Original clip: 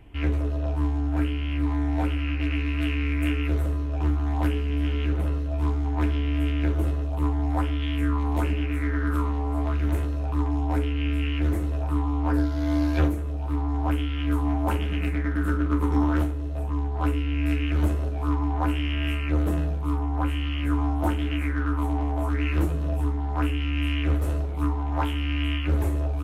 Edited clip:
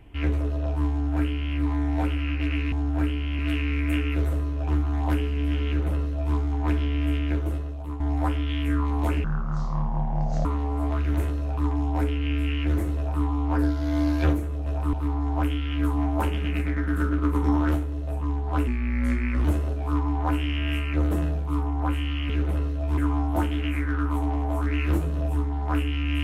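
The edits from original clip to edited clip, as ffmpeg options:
-filter_complex "[0:a]asplit=12[a][b][c][d][e][f][g][h][i][j][k][l];[a]atrim=end=2.722[m];[b]atrim=start=0.898:end=1.572[n];[c]atrim=start=2.718:end=7.33,asetpts=PTS-STARTPTS,afade=t=out:st=3.732:d=0.88:silence=0.298538[o];[d]atrim=start=7.33:end=8.574,asetpts=PTS-STARTPTS,afade=t=in:d=0.004:c=hsin:silence=0.298538[p];[e]atrim=start=8.57:end=9.2,asetpts=PTS-STARTPTS,asetrate=22932,aresample=44100[q];[f]atrim=start=9.196:end=13.412[r];[g]atrim=start=11.718:end=11.992[s];[h]atrim=start=13.408:end=17.154[t];[i]atrim=start=17.15:end=17.8,asetpts=PTS-STARTPTS,asetrate=37044,aresample=44100[u];[j]atrim=start=17.796:end=20.652[v];[k]atrim=start=4.998:end=5.682[w];[l]atrim=start=20.648[x];[m][n]acrossfade=d=0.004:c1=hsin:c2=hsin[y];[o][p]concat=n=2:v=0:a=1[z];[y][z]acrossfade=d=0.004:c1=hsin:c2=hsin[aa];[aa][q]acrossfade=d=0.004:c1=hsin:c2=hsin[ab];[ab][r]acrossfade=d=0.004:c1=hsin:c2=hsin[ac];[ac][s]acrossfade=d=0.004:c1=hsin:c2=hsin[ad];[ad][t]acrossfade=d=0.004:c1=hsin:c2=hsin[ae];[ae][u]acrossfade=d=0.004:c1=hsin:c2=hsin[af];[af][v]acrossfade=d=0.004:c1=hsin:c2=hsin[ag];[ag][w]acrossfade=d=0.004:c1=hsin:c2=hsin[ah];[ah][x]acrossfade=d=0.004:c1=hsin:c2=hsin"

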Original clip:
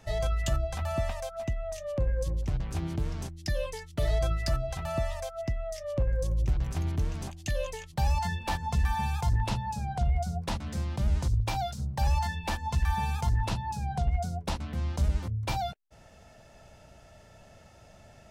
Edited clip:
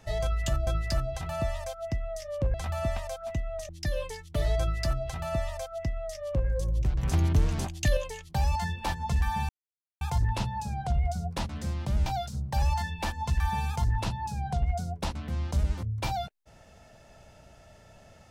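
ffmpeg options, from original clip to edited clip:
-filter_complex "[0:a]asplit=8[a][b][c][d][e][f][g][h];[a]atrim=end=0.672[i];[b]atrim=start=4.228:end=6.102[j];[c]atrim=start=0.668:end=1.822[k];[d]atrim=start=3.318:end=6.662[l];[e]atrim=start=6.658:end=7.602,asetpts=PTS-STARTPTS,volume=6dB[m];[f]atrim=start=7.598:end=9.12,asetpts=PTS-STARTPTS,afade=t=out:st=1.518:d=0.004:c=hsin,apad=pad_dur=0.52[n];[g]atrim=start=9.12:end=11.172,asetpts=PTS-STARTPTS,afade=t=in:d=0.004:c=hsin[o];[h]atrim=start=11.508[p];[i][j]acrossfade=d=0.004:c1=hsin:c2=hsin[q];[q][k]acrossfade=d=0.004:c1=hsin:c2=hsin[r];[r][l]acrossfade=d=0.004:c1=hsin:c2=hsin[s];[s][m]acrossfade=d=0.004:c1=hsin:c2=hsin[t];[n][o]concat=n=2:v=0:a=1[u];[t][u]acrossfade=d=0.004:c1=hsin:c2=hsin[v];[v][p]acrossfade=d=0.004:c1=hsin:c2=hsin"

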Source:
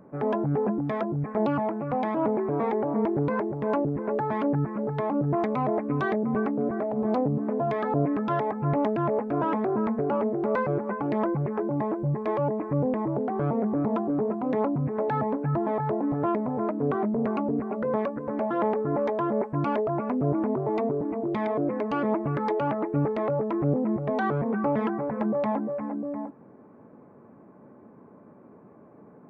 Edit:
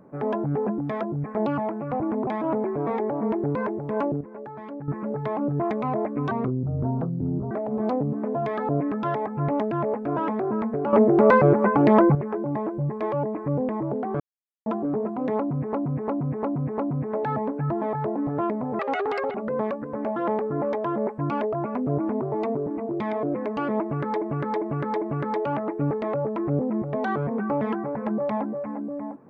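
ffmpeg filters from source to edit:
-filter_complex "[0:a]asplit=20[a][b][c][d][e][f][g][h][i][j][k][l][m][n][o][p][q][r][s][t];[a]atrim=end=2.002[u];[b]atrim=start=20.318:end=20.592[v];[c]atrim=start=1.998:end=3.942[w];[d]atrim=start=3.938:end=4.612,asetpts=PTS-STARTPTS,volume=-11dB[x];[e]atrim=start=4.608:end=6.044[y];[f]atrim=start=6.04:end=6.76,asetpts=PTS-STARTPTS,asetrate=26460,aresample=44100[z];[g]atrim=start=6.756:end=10.182[aa];[h]atrim=start=10.178:end=11.402,asetpts=PTS-STARTPTS,volume=10dB[ab];[i]atrim=start=11.398:end=13.45,asetpts=PTS-STARTPTS,afade=t=out:st=2.048:d=0.004:c=hsin[ac];[j]atrim=start=13.45:end=13.91,asetpts=PTS-STARTPTS,volume=0[ad];[k]atrim=start=13.91:end=14.982,asetpts=PTS-STARTPTS,afade=t=in:d=0.004:c=hsin[ae];[l]atrim=start=14.628:end=14.982[af];[m]atrim=start=14.628:end=14.982[ag];[n]atrim=start=14.628:end=14.982[ah];[o]atrim=start=14.628:end=16.644[ai];[p]atrim=start=16.64:end=17.69,asetpts=PTS-STARTPTS,asetrate=83349,aresample=44100[aj];[q]atrim=start=17.686:end=22.562[ak];[r]atrim=start=22.158:end=22.562[al];[s]atrim=start=22.158:end=22.562[am];[t]atrim=start=22.158[an];[u][v]acrossfade=d=0.004:c1=hsin:c2=hsin[ao];[ao][w]acrossfade=d=0.004:c1=hsin:c2=hsin[ap];[ap][x]acrossfade=d=0.004:c1=hsin:c2=hsin[aq];[aq][y]acrossfade=d=0.004:c1=hsin:c2=hsin[ar];[ar][z]acrossfade=d=0.004:c1=hsin:c2=hsin[as];[as][aa]acrossfade=d=0.004:c1=hsin:c2=hsin[at];[at][ab]acrossfade=d=0.004:c1=hsin:c2=hsin[au];[ac][ad][ae]concat=n=3:v=0:a=1[av];[au][av]acrossfade=d=0.004:c1=hsin:c2=hsin[aw];[aw][af]acrossfade=d=0.004:c1=hsin:c2=hsin[ax];[ax][ag]acrossfade=d=0.004:c1=hsin:c2=hsin[ay];[ay][ah]acrossfade=d=0.004:c1=hsin:c2=hsin[az];[az][ai]acrossfade=d=0.004:c1=hsin:c2=hsin[ba];[ba][aj]acrossfade=d=0.004:c1=hsin:c2=hsin[bb];[bb][ak]acrossfade=d=0.004:c1=hsin:c2=hsin[bc];[bc][al]acrossfade=d=0.004:c1=hsin:c2=hsin[bd];[bd][am]acrossfade=d=0.004:c1=hsin:c2=hsin[be];[be][an]acrossfade=d=0.004:c1=hsin:c2=hsin"

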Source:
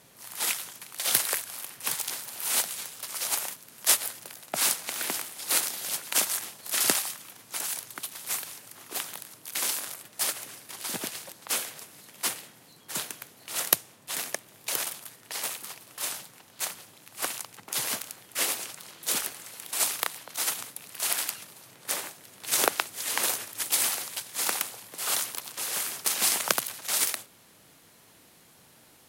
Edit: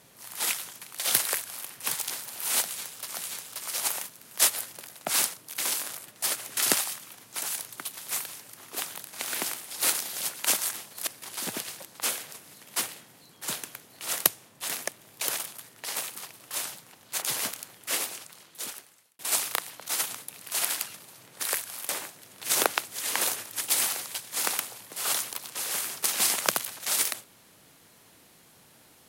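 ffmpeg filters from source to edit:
-filter_complex "[0:a]asplit=10[a][b][c][d][e][f][g][h][i][j];[a]atrim=end=3.162[k];[b]atrim=start=2.628:end=4.812[l];[c]atrim=start=9.308:end=10.542[m];[d]atrim=start=6.748:end=9.312[n];[e]atrim=start=4.808:end=6.752[o];[f]atrim=start=10.538:end=16.692[p];[g]atrim=start=17.698:end=19.67,asetpts=PTS-STARTPTS,afade=t=out:st=0.502:d=1.47[q];[h]atrim=start=19.67:end=21.912,asetpts=PTS-STARTPTS,afade=t=in:d=0.004:c=hsin[r];[i]atrim=start=1.228:end=1.692[s];[j]atrim=start=21.908[t];[k][l]acrossfade=d=0.004:c1=hsin:c2=hsin[u];[u][m]acrossfade=d=0.004:c1=hsin:c2=hsin[v];[v][n]acrossfade=d=0.004:c1=hsin:c2=hsin[w];[w][o]acrossfade=d=0.004:c1=hsin:c2=hsin[x];[x][p]acrossfade=d=0.004:c1=hsin:c2=hsin[y];[q][r]concat=n=2:v=0:a=1[z];[y][z]acrossfade=d=0.004:c1=hsin:c2=hsin[aa];[aa][s]acrossfade=d=0.004:c1=hsin:c2=hsin[ab];[ab][t]acrossfade=d=0.004:c1=hsin:c2=hsin"

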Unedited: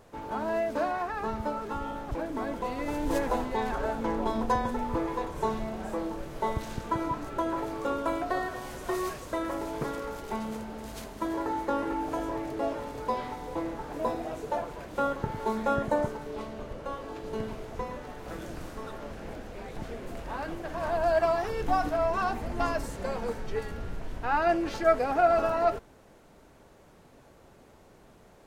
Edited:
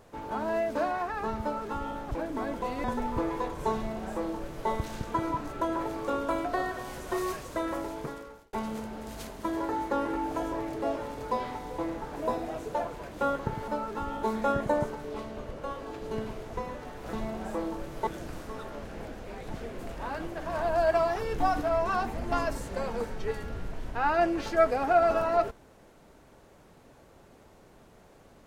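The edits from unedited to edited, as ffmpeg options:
-filter_complex "[0:a]asplit=7[a][b][c][d][e][f][g];[a]atrim=end=2.842[h];[b]atrim=start=4.608:end=10.3,asetpts=PTS-STARTPTS,afade=t=out:st=4.902:d=0.79[i];[c]atrim=start=10.3:end=15.452,asetpts=PTS-STARTPTS,afade=t=in:d=0.004:c=hsin[j];[d]atrim=start=1.418:end=1.972[k];[e]atrim=start=15.448:end=18.352[l];[f]atrim=start=5.518:end=6.462[m];[g]atrim=start=18.348[n];[i][j]concat=n=2:v=0:a=1[o];[h][o]acrossfade=d=0.004:c1=hsin:c2=hsin[p];[p][k]acrossfade=d=0.004:c1=hsin:c2=hsin[q];[q][l]acrossfade=d=0.004:c1=hsin:c2=hsin[r];[r][m]acrossfade=d=0.004:c1=hsin:c2=hsin[s];[s][n]acrossfade=d=0.004:c1=hsin:c2=hsin"

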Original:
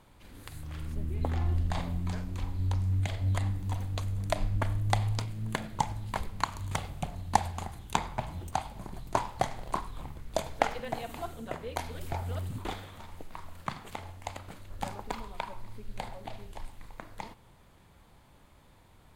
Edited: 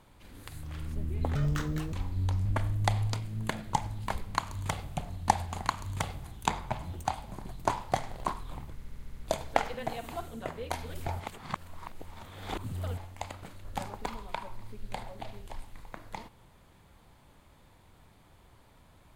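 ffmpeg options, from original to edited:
-filter_complex "[0:a]asplit=14[a][b][c][d][e][f][g][h][i][j][k][l][m][n];[a]atrim=end=1.354[o];[b]atrim=start=1.35:end=2.35,asetpts=PTS-STARTPTS,asetrate=76734,aresample=44100[p];[c]atrim=start=2.346:end=2.882[q];[d]atrim=start=4.508:end=7.712[r];[e]atrim=start=6.398:end=6.982[s];[f]atrim=start=7.708:end=10.292[t];[g]atrim=start=10.218:end=10.292[u];[h]atrim=start=10.218:end=10.292[v];[i]atrim=start=10.218:end=10.292[w];[j]atrim=start=10.218:end=10.292[x];[k]atrim=start=10.218:end=10.292[y];[l]atrim=start=10.218:end=12.252[z];[m]atrim=start=12.248:end=14.032,asetpts=PTS-STARTPTS,areverse[aa];[n]atrim=start=14.028[ab];[o][p]acrossfade=d=0.004:c1=hsin:c2=hsin[ac];[ac][q]acrossfade=d=0.004:c1=hsin:c2=hsin[ad];[ad][r]acrossfade=d=0.004:c1=hsin:c2=hsin[ae];[ae][s]acrossfade=d=0.004:c1=hsin:c2=hsin[af];[af][t]acrossfade=d=0.004:c1=hsin:c2=hsin[ag];[ag][u]acrossfade=d=0.004:c1=hsin:c2=hsin[ah];[ah][v]acrossfade=d=0.004:c1=hsin:c2=hsin[ai];[ai][w]acrossfade=d=0.004:c1=hsin:c2=hsin[aj];[aj][x]acrossfade=d=0.004:c1=hsin:c2=hsin[ak];[ak][y]acrossfade=d=0.004:c1=hsin:c2=hsin[al];[al][z]acrossfade=d=0.004:c1=hsin:c2=hsin[am];[am][aa]acrossfade=d=0.004:c1=hsin:c2=hsin[an];[an][ab]acrossfade=d=0.004:c1=hsin:c2=hsin"

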